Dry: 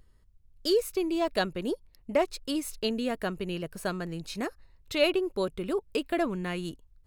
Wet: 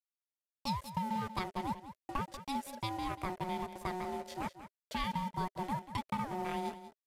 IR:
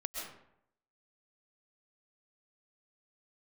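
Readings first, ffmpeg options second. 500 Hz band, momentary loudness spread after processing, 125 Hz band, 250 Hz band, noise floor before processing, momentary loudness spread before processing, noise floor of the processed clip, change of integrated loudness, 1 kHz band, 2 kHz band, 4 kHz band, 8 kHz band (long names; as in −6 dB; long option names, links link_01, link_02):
−16.0 dB, 6 LU, −2.0 dB, −9.0 dB, −62 dBFS, 9 LU, below −85 dBFS, −8.0 dB, +2.0 dB, −9.0 dB, −10.5 dB, −10.0 dB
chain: -af "equalizer=frequency=350:width_type=o:width=0.35:gain=7.5,aeval=exprs='val(0)*sin(2*PI*550*n/s)':channel_layout=same,acompressor=threshold=-27dB:ratio=8,aeval=exprs='sgn(val(0))*max(abs(val(0))-0.00473,0)':channel_layout=same,acrusher=bits=7:mix=0:aa=0.5,equalizer=frequency=400:width_type=o:width=0.33:gain=7,equalizer=frequency=630:width_type=o:width=0.33:gain=10,equalizer=frequency=2000:width_type=o:width=0.33:gain=3,aecho=1:1:188:0.237,aresample=32000,aresample=44100,volume=-4.5dB"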